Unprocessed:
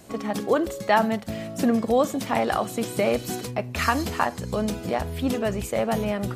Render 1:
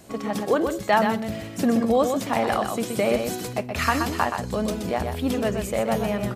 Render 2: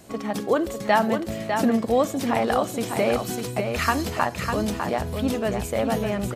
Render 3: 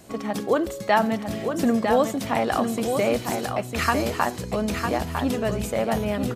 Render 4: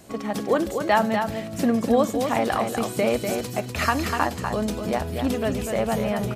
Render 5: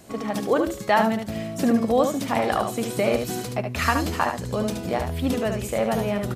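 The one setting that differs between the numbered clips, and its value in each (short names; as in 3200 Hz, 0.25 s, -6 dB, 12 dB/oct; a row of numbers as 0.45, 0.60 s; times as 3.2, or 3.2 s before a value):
echo, time: 125, 601, 953, 246, 73 ms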